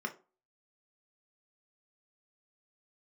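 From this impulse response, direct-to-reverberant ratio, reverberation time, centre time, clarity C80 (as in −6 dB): 3.0 dB, 0.35 s, 8 ms, 21.0 dB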